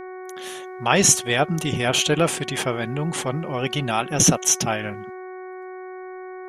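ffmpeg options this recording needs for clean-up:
-af "bandreject=f=370.8:t=h:w=4,bandreject=f=741.6:t=h:w=4,bandreject=f=1.1124k:t=h:w=4,bandreject=f=1.4832k:t=h:w=4,bandreject=f=1.854k:t=h:w=4,bandreject=f=2.2248k:t=h:w=4"

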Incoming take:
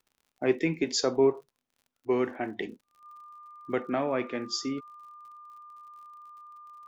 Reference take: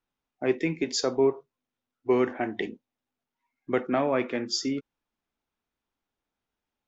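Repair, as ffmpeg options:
-af "adeclick=t=4,bandreject=f=1.2k:w=30,asetnsamples=n=441:p=0,asendcmd='2.01 volume volume 3.5dB',volume=0dB"

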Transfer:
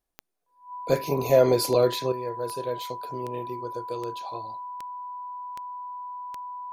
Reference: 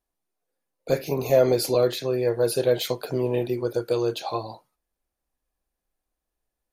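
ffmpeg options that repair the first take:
-af "adeclick=t=4,bandreject=f=990:w=30,asetnsamples=n=441:p=0,asendcmd='2.12 volume volume 10dB',volume=0dB"

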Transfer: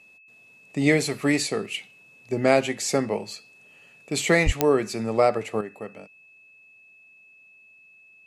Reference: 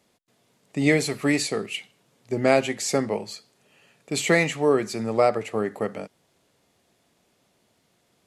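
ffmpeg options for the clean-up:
-filter_complex "[0:a]adeclick=t=4,bandreject=f=2.6k:w=30,asplit=3[a][b][c];[a]afade=t=out:st=4.45:d=0.02[d];[b]highpass=f=140:w=0.5412,highpass=f=140:w=1.3066,afade=t=in:st=4.45:d=0.02,afade=t=out:st=4.57:d=0.02[e];[c]afade=t=in:st=4.57:d=0.02[f];[d][e][f]amix=inputs=3:normalize=0,asetnsamples=n=441:p=0,asendcmd='5.61 volume volume 9dB',volume=0dB"

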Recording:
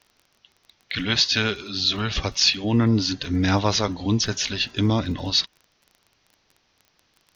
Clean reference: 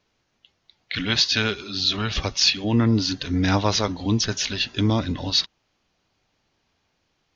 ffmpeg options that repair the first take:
-af "adeclick=t=4,agate=range=-21dB:threshold=-59dB"

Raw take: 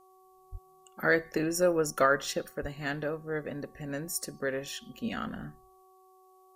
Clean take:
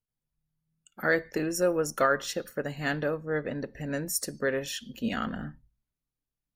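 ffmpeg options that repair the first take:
-filter_complex "[0:a]bandreject=f=375.1:t=h:w=4,bandreject=f=750.2:t=h:w=4,bandreject=f=1.1253k:t=h:w=4,asplit=3[a][b][c];[a]afade=t=out:st=0.51:d=0.02[d];[b]highpass=f=140:w=0.5412,highpass=f=140:w=1.3066,afade=t=in:st=0.51:d=0.02,afade=t=out:st=0.63:d=0.02[e];[c]afade=t=in:st=0.63:d=0.02[f];[d][e][f]amix=inputs=3:normalize=0,asplit=3[g][h][i];[g]afade=t=out:st=2.61:d=0.02[j];[h]highpass=f=140:w=0.5412,highpass=f=140:w=1.3066,afade=t=in:st=2.61:d=0.02,afade=t=out:st=2.73:d=0.02[k];[i]afade=t=in:st=2.73:d=0.02[l];[j][k][l]amix=inputs=3:normalize=0,agate=range=-21dB:threshold=-52dB,asetnsamples=n=441:p=0,asendcmd='2.48 volume volume 4dB',volume=0dB"

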